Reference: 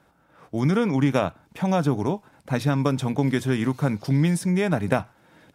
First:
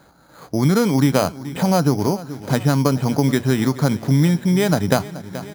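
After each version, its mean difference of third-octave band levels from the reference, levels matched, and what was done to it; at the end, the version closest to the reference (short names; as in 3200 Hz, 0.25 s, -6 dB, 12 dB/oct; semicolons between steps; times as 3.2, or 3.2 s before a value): 6.5 dB: feedback echo 0.428 s, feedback 52%, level -18 dB; in parallel at 0 dB: compressor, threshold -31 dBFS, peak gain reduction 15 dB; on the sum: careless resampling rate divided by 8×, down filtered, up hold; gain +3 dB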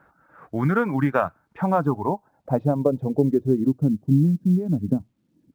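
9.0 dB: reverb removal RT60 0.91 s; low-pass sweep 1500 Hz -> 250 Hz, 1.4–4.07; companded quantiser 8-bit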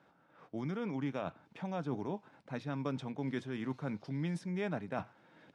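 4.0 dB: reverse; compressor, threshold -27 dBFS, peak gain reduction 12 dB; reverse; tremolo triangle 2.2 Hz, depth 35%; BPF 140–4500 Hz; gain -4.5 dB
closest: third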